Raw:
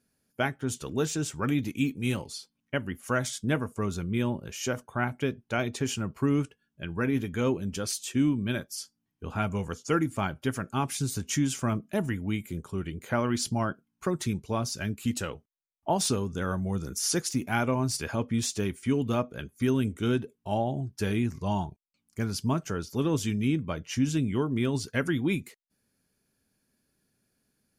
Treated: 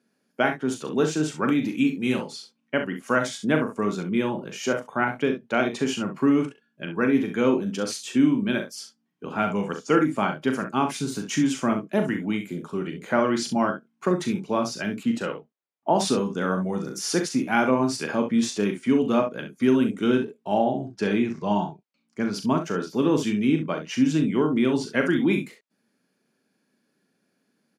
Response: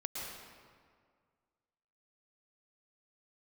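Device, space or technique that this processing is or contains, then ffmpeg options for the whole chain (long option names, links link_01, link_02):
slapback doubling: -filter_complex "[0:a]highpass=frequency=180:width=0.5412,highpass=frequency=180:width=1.3066,aemphasis=mode=reproduction:type=50fm,asettb=1/sr,asplit=3[link_01][link_02][link_03];[link_01]atrim=end=20.654[link_04];[link_02]atrim=start=20.65:end=22.34,asetpts=PTS-STARTPTS,afade=type=in:duration=0.004:curve=qsin,afade=type=out:start_time=1.686:duration=0.004:curve=qsin,lowpass=7000[link_05];[link_03]atrim=start=22.336[link_06];[link_04][link_05]acrossfade=duration=0.004:curve1=hsin:curve2=qsin[link_07];[link_07][link_06]acrossfade=duration=0.004:curve1=qsin:curve2=hsin,asplit=3[link_08][link_09][link_10];[link_09]adelay=39,volume=-7.5dB[link_11];[link_10]adelay=65,volume=-10dB[link_12];[link_08][link_11][link_12]amix=inputs=3:normalize=0,asettb=1/sr,asplit=3[link_13][link_14][link_15];[link_13]atrim=end=15.034[link_16];[link_14]atrim=start=15.03:end=15.95,asetpts=PTS-STARTPTS,afade=type=in:duration=0.004:curve=qsin,afade=type=out:start_time=0.916:duration=0.004:curve=qsin,highshelf=frequency=4300:gain=-10.5[link_17];[link_15]atrim=start=15.946[link_18];[link_16][link_17]acrossfade=duration=0.004:curve1=hsin:curve2=qsin[link_19];[link_19][link_18]acrossfade=duration=0.004:curve1=qsin:curve2=hsin,volume=5.5dB"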